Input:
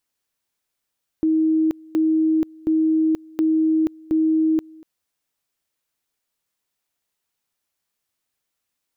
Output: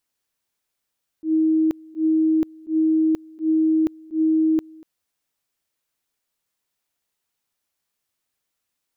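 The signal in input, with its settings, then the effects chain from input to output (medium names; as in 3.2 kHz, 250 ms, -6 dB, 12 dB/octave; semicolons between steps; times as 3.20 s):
two-level tone 317 Hz -15 dBFS, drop 25.5 dB, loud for 0.48 s, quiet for 0.24 s, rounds 5
slow attack 107 ms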